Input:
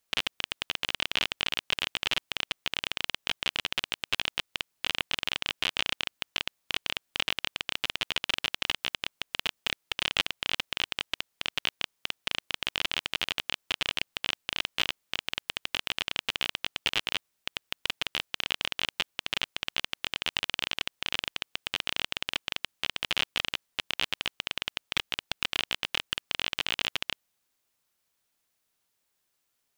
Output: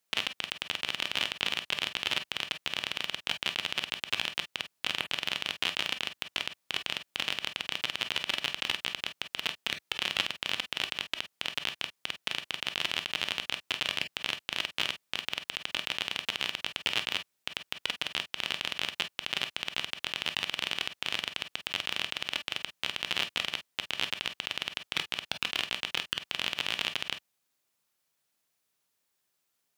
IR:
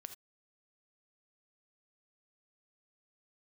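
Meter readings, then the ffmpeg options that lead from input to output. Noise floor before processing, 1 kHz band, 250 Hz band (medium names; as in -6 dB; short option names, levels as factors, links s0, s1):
-78 dBFS, -1.0 dB, -1.0 dB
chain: -filter_complex "[0:a]highpass=82[s0];[1:a]atrim=start_sample=2205,asetrate=70560,aresample=44100[s1];[s0][s1]afir=irnorm=-1:irlink=0,volume=2.66"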